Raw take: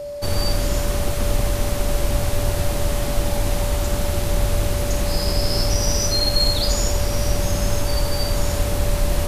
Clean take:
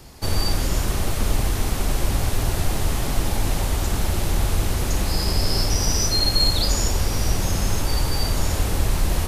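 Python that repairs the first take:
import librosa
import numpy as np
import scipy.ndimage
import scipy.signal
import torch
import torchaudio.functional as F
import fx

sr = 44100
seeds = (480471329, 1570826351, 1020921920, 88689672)

y = fx.notch(x, sr, hz=580.0, q=30.0)
y = fx.fix_echo_inverse(y, sr, delay_ms=80, level_db=-11.0)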